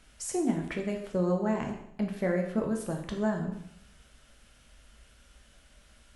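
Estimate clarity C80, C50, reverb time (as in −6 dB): 9.5 dB, 7.0 dB, 0.70 s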